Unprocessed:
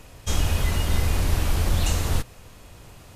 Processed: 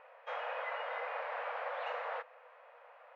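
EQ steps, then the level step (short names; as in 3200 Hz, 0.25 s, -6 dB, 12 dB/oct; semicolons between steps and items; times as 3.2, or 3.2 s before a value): brick-wall FIR high-pass 460 Hz; LPF 2000 Hz 24 dB/oct; -3.0 dB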